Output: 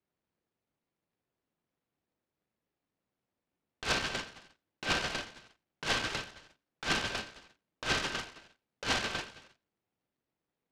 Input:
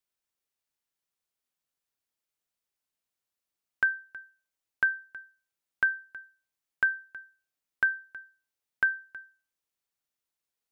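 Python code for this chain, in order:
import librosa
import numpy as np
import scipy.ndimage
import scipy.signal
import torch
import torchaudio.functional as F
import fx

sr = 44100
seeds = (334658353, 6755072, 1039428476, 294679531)

p1 = fx.level_steps(x, sr, step_db=16)
p2 = x + F.gain(torch.from_numpy(p1), -1.0).numpy()
p3 = scipy.signal.sosfilt(scipy.signal.butter(2, 160.0, 'highpass', fs=sr, output='sos'), p2)
p4 = fx.tilt_eq(p3, sr, slope=-4.5)
p5 = fx.echo_feedback(p4, sr, ms=84, feedback_pct=27, wet_db=-22.5)
p6 = fx.rev_gated(p5, sr, seeds[0], gate_ms=430, shape='falling', drr_db=8.5)
p7 = fx.over_compress(p6, sr, threshold_db=-29.0, ratio=-0.5)
p8 = scipy.signal.sosfilt(scipy.signal.butter(4, 2400.0, 'lowpass', fs=sr, output='sos'), p7)
y = fx.noise_mod_delay(p8, sr, seeds[1], noise_hz=1200.0, depth_ms=0.15)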